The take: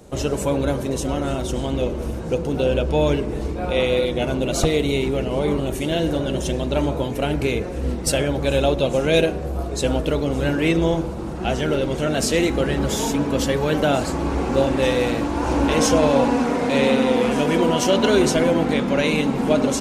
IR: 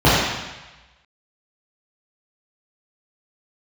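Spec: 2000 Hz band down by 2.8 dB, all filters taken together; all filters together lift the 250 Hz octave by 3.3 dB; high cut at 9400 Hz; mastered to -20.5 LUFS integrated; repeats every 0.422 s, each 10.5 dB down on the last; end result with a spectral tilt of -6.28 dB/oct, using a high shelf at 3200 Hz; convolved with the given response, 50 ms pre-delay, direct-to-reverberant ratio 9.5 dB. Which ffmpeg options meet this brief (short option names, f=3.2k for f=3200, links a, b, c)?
-filter_complex "[0:a]lowpass=9.4k,equalizer=f=250:t=o:g=4,equalizer=f=2k:t=o:g=-5,highshelf=f=3.2k:g=3,aecho=1:1:422|844|1266:0.299|0.0896|0.0269,asplit=2[a][b];[1:a]atrim=start_sample=2205,adelay=50[c];[b][c]afir=irnorm=-1:irlink=0,volume=-36.5dB[d];[a][d]amix=inputs=2:normalize=0,volume=-3dB"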